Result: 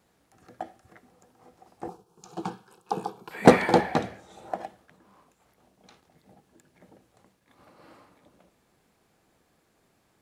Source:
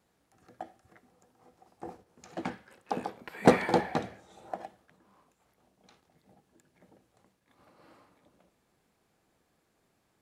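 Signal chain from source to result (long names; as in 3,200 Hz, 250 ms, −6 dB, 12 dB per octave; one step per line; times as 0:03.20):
0:01.88–0:03.31: phaser with its sweep stopped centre 390 Hz, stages 8
level +5.5 dB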